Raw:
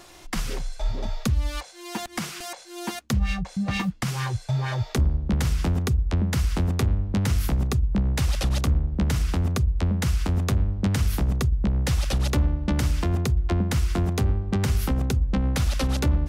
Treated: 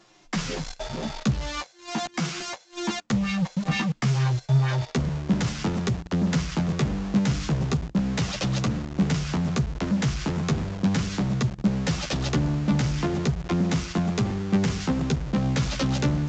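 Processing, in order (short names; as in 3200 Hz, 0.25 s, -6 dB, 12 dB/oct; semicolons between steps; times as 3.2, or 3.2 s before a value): resonant low shelf 110 Hz -9 dB, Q 3; flange 0.35 Hz, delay 9.1 ms, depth 6 ms, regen 0%; in parallel at -7 dB: companded quantiser 2-bit; on the sum: gate -35 dBFS, range -6 dB; A-law 128 kbps 16000 Hz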